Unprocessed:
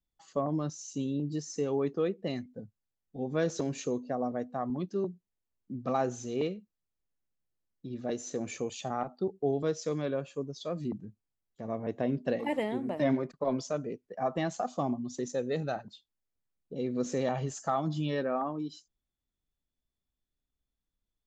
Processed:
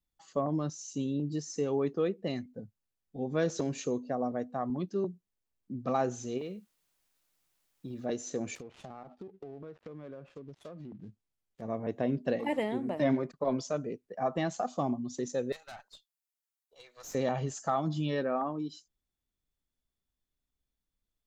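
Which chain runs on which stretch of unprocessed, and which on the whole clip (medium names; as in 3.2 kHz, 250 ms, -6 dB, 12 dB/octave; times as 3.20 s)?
6.37–8.04 s: compression 5:1, threshold -35 dBFS + added noise white -78 dBFS
8.55–11.62 s: dead-time distortion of 0.11 ms + low-pass that closes with the level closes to 2 kHz, closed at -30 dBFS + compression 10:1, threshold -41 dBFS
15.52–17.15 s: high-pass 790 Hz 24 dB/octave + treble shelf 5.8 kHz +10 dB + valve stage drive 42 dB, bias 0.75
whole clip: none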